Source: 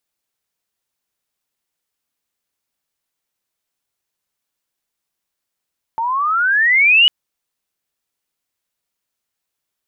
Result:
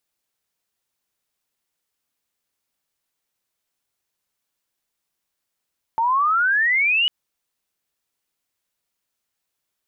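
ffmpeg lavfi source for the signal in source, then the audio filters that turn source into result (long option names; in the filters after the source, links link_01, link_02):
-f lavfi -i "aevalsrc='pow(10,(-6.5+10.5*(t/1.1-1))/20)*sin(2*PI*886*1.1/(21*log(2)/12)*(exp(21*log(2)/12*t/1.1)-1))':duration=1.1:sample_rate=44100"
-af "alimiter=limit=-15.5dB:level=0:latency=1:release=59"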